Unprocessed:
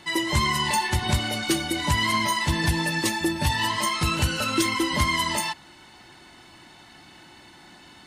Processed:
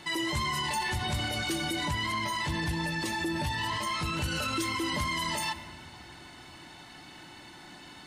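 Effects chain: reverberation RT60 1.9 s, pre-delay 7 ms, DRR 14 dB; peak limiter -23 dBFS, peak gain reduction 10.5 dB; 1.83–4.24 s: treble shelf 6.1 kHz -5 dB

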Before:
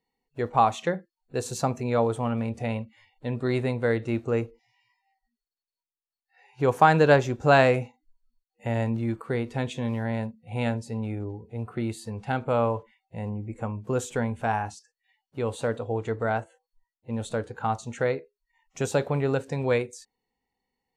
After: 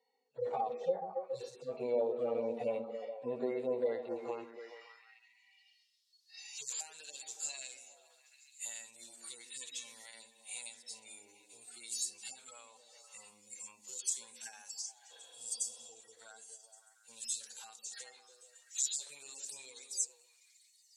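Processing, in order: harmonic-percussive separation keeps harmonic; RIAA curve recording; spectral replace 15.13–15.82 s, 250–4500 Hz after; peaking EQ 5.3 kHz +12.5 dB 2.4 oct; compression 10:1, threshold -38 dBFS, peak gain reduction 24 dB; repeats whose band climbs or falls 140 ms, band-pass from 240 Hz, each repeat 0.7 oct, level -1.5 dB; band-pass sweep 540 Hz -> 7.8 kHz, 3.75–6.86 s; trim +11 dB

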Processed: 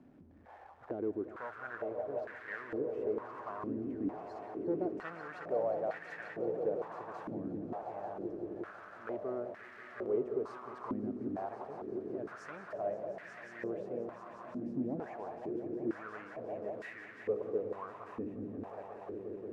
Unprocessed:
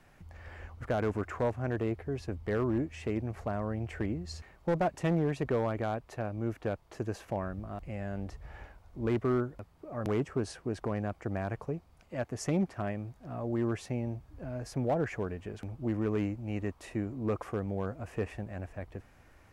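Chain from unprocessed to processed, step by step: jump at every zero crossing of -43.5 dBFS; on a send: echo with a slow build-up 178 ms, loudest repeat 5, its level -10 dB; on the sum: step-sequenced band-pass 2.2 Hz 270–1800 Hz; trim +1.5 dB

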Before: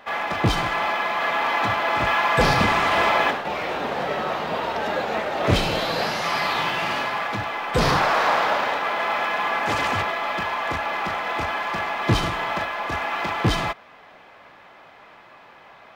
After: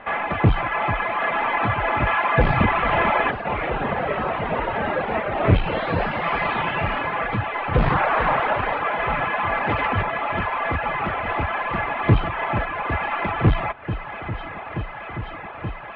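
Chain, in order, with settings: on a send: echo whose repeats swap between lows and highs 439 ms, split 1.2 kHz, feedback 89%, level -13.5 dB; on the sum: reverb removal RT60 0.74 s; inverse Chebyshev low-pass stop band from 6.7 kHz, stop band 50 dB; bass shelf 120 Hz +11 dB; in parallel at -1 dB: compression, threshold -33 dBFS, peak gain reduction 22 dB; on the sum: transformer saturation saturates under 160 Hz

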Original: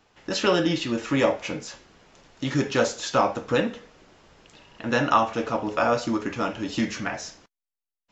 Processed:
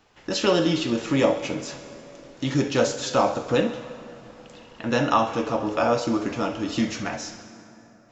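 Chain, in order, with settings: dynamic bell 1.6 kHz, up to -5 dB, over -40 dBFS, Q 1.2; on a send: thinning echo 67 ms, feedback 75%, high-pass 420 Hz, level -15 dB; on the sum: plate-style reverb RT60 3.9 s, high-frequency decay 0.55×, DRR 13 dB; trim +1.5 dB

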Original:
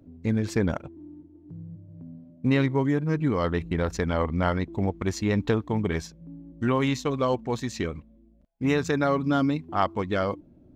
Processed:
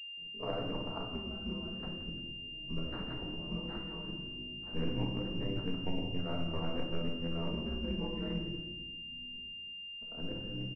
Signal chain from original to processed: reverse the whole clip; Doppler pass-by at 2.61 s, 10 m/s, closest 9.3 m; gate with hold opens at -53 dBFS; compressor with a negative ratio -34 dBFS, ratio -0.5; ring modulator 86 Hz; frequency-shifting echo 173 ms, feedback 33%, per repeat -56 Hz, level -13 dB; simulated room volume 550 m³, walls mixed, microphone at 1.6 m; class-D stage that switches slowly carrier 2.8 kHz; trim -4.5 dB

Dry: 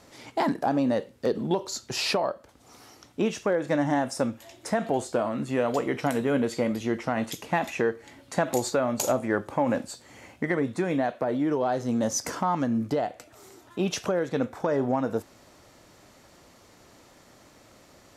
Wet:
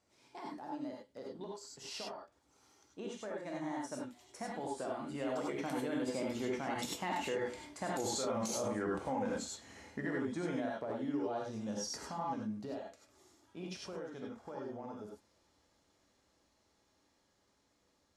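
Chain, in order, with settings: Doppler pass-by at 7.99 s, 23 m/s, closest 1.6 m; low-pass 8.6 kHz 12 dB/octave; treble shelf 4.7 kHz +5 dB; reverse; compression 10:1, threshold -49 dBFS, peak gain reduction 28.5 dB; reverse; gated-style reverb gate 120 ms rising, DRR -1.5 dB; peak limiter -44.5 dBFS, peak gain reduction 9 dB; trim +17 dB

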